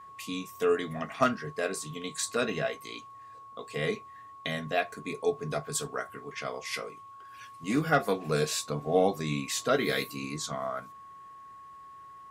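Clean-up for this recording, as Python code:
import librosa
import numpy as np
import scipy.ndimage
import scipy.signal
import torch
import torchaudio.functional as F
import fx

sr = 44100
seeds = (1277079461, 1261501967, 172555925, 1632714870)

y = fx.fix_declip(x, sr, threshold_db=-12.0)
y = fx.notch(y, sr, hz=1100.0, q=30.0)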